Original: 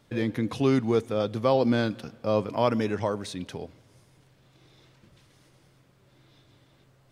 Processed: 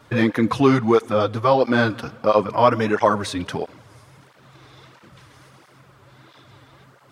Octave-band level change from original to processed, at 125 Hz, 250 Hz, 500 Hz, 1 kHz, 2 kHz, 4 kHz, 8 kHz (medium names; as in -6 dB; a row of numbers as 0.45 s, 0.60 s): +5.0 dB, +6.0 dB, +7.0 dB, +11.5 dB, +11.5 dB, +6.5 dB, +7.0 dB